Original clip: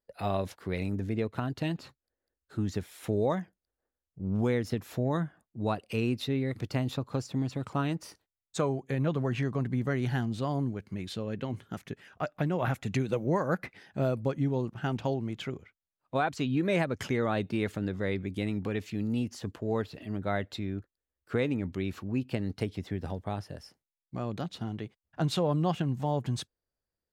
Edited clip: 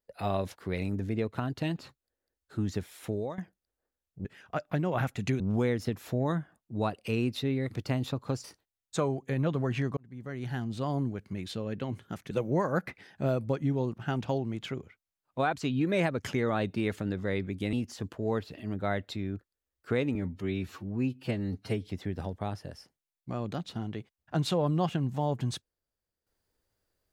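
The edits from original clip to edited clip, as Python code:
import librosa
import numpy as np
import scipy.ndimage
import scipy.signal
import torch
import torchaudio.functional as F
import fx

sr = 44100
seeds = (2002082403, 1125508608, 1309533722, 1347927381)

y = fx.edit(x, sr, fx.fade_out_to(start_s=2.96, length_s=0.42, floor_db=-15.0),
    fx.cut(start_s=7.29, length_s=0.76),
    fx.fade_in_span(start_s=9.58, length_s=0.95),
    fx.move(start_s=11.92, length_s=1.15, to_s=4.25),
    fx.cut(start_s=18.49, length_s=0.67),
    fx.stretch_span(start_s=21.58, length_s=1.15, factor=1.5), tone=tone)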